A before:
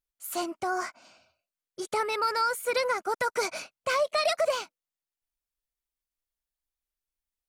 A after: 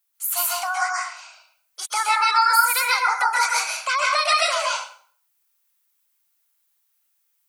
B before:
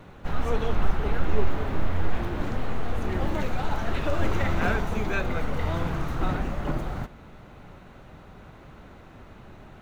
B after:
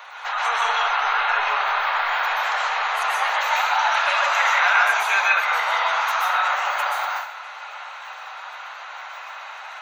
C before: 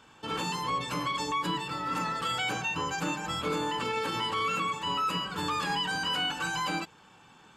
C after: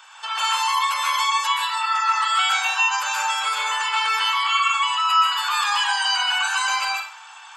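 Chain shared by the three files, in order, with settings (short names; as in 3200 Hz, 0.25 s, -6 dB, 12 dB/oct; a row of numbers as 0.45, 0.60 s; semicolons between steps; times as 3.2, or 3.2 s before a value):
inverse Chebyshev high-pass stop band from 320 Hz, stop band 50 dB; spectral gate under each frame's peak -30 dB strong; high shelf 11000 Hz +11.5 dB; in parallel at +2.5 dB: compressor, threshold -40 dBFS; on the sum: plate-style reverb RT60 0.5 s, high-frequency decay 0.85×, pre-delay 0.115 s, DRR -3 dB; match loudness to -20 LUFS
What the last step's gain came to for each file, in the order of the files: +3.5, +7.0, +3.5 dB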